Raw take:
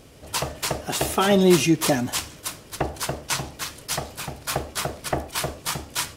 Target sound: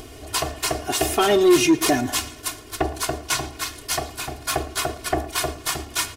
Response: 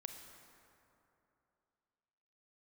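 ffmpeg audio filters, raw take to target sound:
-filter_complex "[0:a]acompressor=mode=upward:threshold=-36dB:ratio=2.5,aecho=1:1:2.8:0.91,asplit=2[a][b];[b]adelay=113,lowpass=f=4.6k:p=1,volume=-19dB,asplit=2[c][d];[d]adelay=113,lowpass=f=4.6k:p=1,volume=0.47,asplit=2[e][f];[f]adelay=113,lowpass=f=4.6k:p=1,volume=0.47,asplit=2[g][h];[h]adelay=113,lowpass=f=4.6k:p=1,volume=0.47[i];[c][e][g][i]amix=inputs=4:normalize=0[j];[a][j]amix=inputs=2:normalize=0,acontrast=89,volume=-7dB"

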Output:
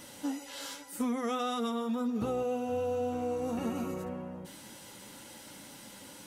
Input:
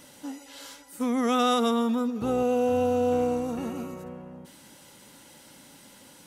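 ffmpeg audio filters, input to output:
-af "acompressor=threshold=-31dB:ratio=8,flanger=delay=8.9:depth=1.6:regen=-40:speed=1.9:shape=triangular,volume=6dB"

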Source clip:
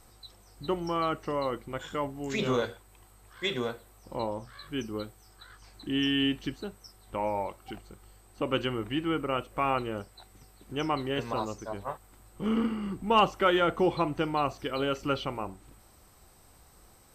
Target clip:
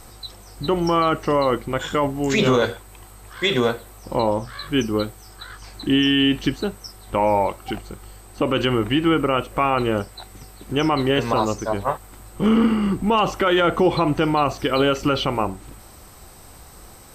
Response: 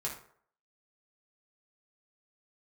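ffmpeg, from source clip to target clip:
-af "alimiter=level_in=21dB:limit=-1dB:release=50:level=0:latency=1,volume=-7.5dB"

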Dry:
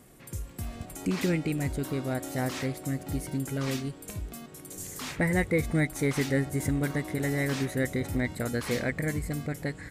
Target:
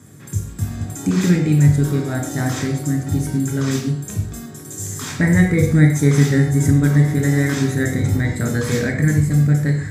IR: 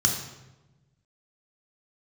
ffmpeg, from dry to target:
-filter_complex "[1:a]atrim=start_sample=2205,afade=t=out:st=0.21:d=0.01,atrim=end_sample=9702,asetrate=48510,aresample=44100[a];[0:a][a]afir=irnorm=-1:irlink=0,volume=-3dB"

